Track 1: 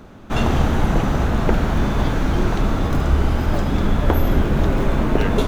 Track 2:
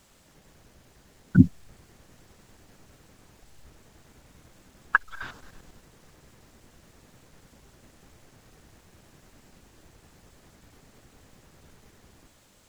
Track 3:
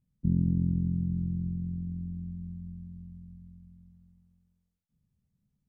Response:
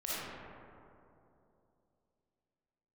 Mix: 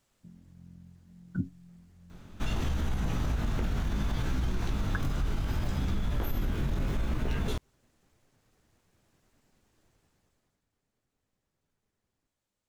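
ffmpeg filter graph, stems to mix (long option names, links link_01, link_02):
-filter_complex "[0:a]equalizer=frequency=590:width=0.33:gain=-10.5,adelay=2100,volume=-0.5dB[link_01];[1:a]flanger=delay=6.8:depth=3.4:regen=-63:speed=1.8:shape=triangular,volume=-10dB,afade=type=out:start_time=9.94:duration=0.71:silence=0.223872[link_02];[2:a]acompressor=threshold=-38dB:ratio=3,volume=-12dB[link_03];[link_01][link_03]amix=inputs=2:normalize=0,flanger=delay=15.5:depth=6.7:speed=0.68,alimiter=limit=-18.5dB:level=0:latency=1:release=41,volume=0dB[link_04];[link_02][link_04]amix=inputs=2:normalize=0,acompressor=threshold=-26dB:ratio=3"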